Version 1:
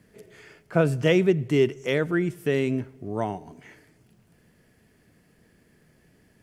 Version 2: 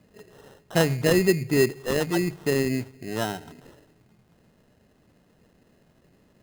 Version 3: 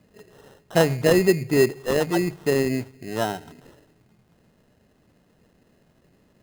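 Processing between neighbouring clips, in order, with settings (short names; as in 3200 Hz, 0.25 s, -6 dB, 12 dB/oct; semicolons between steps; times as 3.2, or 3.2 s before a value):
sample-rate reducer 2300 Hz, jitter 0%; notches 50/100/150 Hz
dynamic EQ 660 Hz, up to +5 dB, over -33 dBFS, Q 0.82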